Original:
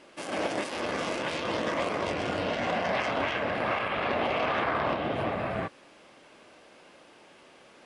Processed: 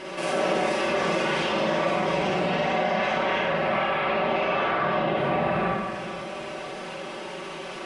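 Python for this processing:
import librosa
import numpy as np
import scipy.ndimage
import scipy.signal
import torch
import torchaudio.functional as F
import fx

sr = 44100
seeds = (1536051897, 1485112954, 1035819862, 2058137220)

p1 = fx.hum_notches(x, sr, base_hz=50, count=4)
p2 = p1 + 0.75 * np.pad(p1, (int(5.3 * sr / 1000.0), 0))[:len(p1)]
p3 = p2 + fx.echo_feedback(p2, sr, ms=476, feedback_pct=42, wet_db=-22, dry=0)
p4 = fx.rider(p3, sr, range_db=10, speed_s=0.5)
p5 = fx.high_shelf(p4, sr, hz=4800.0, db=-6.5)
p6 = fx.rev_schroeder(p5, sr, rt60_s=0.79, comb_ms=38, drr_db=-6.5)
p7 = fx.env_flatten(p6, sr, amount_pct=50)
y = p7 * 10.0 ** (-5.5 / 20.0)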